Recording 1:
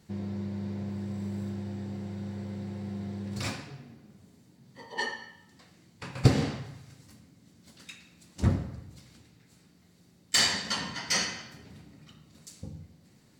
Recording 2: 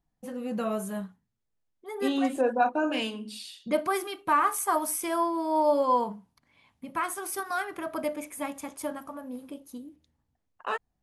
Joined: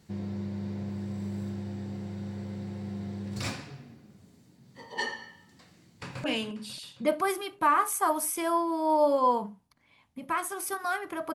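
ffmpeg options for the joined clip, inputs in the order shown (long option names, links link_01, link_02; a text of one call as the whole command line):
ffmpeg -i cue0.wav -i cue1.wav -filter_complex "[0:a]apad=whole_dur=11.34,atrim=end=11.34,atrim=end=6.242[link_01];[1:a]atrim=start=2.898:end=8[link_02];[link_01][link_02]acrossfade=duration=0.004:curve1=hsin:curve2=hsin,asplit=2[link_03][link_04];[link_04]afade=type=in:start_time=5.82:duration=0.01,afade=type=out:start_time=6.24:duration=0.01,aecho=0:1:270|540|810|1080|1350|1620|1890:0.266073|0.159644|0.0957861|0.0574717|0.034483|0.0206898|0.0124139[link_05];[link_03][link_05]amix=inputs=2:normalize=0" out.wav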